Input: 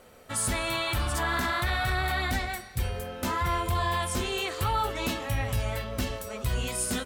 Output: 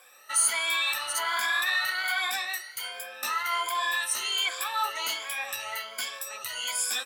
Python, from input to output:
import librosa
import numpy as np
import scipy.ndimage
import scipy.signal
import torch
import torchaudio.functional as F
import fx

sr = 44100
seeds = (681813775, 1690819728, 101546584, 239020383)

p1 = fx.spec_ripple(x, sr, per_octave=1.8, drift_hz=1.3, depth_db=17)
p2 = np.clip(p1, -10.0 ** (-26.0 / 20.0), 10.0 ** (-26.0 / 20.0))
p3 = p1 + (p2 * 10.0 ** (-12.0 / 20.0))
y = scipy.signal.sosfilt(scipy.signal.butter(2, 1300.0, 'highpass', fs=sr, output='sos'), p3)